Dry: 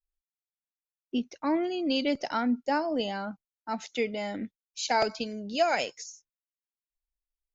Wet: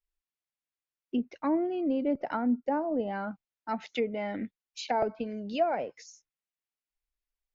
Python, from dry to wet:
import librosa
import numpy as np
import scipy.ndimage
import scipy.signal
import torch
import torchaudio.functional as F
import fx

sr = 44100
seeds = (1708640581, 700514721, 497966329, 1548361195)

y = fx.peak_eq(x, sr, hz=2200.0, db=3.5, octaves=0.92)
y = fx.env_lowpass_down(y, sr, base_hz=820.0, full_db=-25.0)
y = fx.high_shelf(y, sr, hz=6200.0, db=-7.0)